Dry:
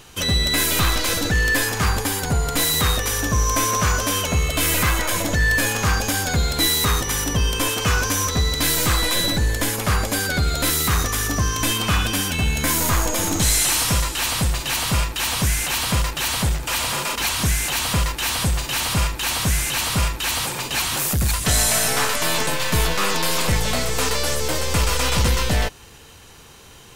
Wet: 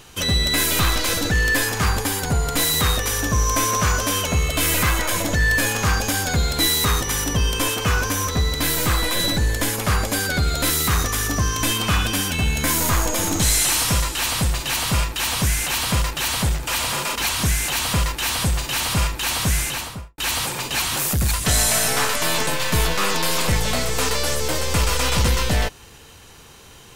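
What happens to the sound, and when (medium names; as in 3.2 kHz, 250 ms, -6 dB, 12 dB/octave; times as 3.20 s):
7.76–9.20 s: peaking EQ 6.1 kHz -3.5 dB 2 oct
19.60–20.18 s: studio fade out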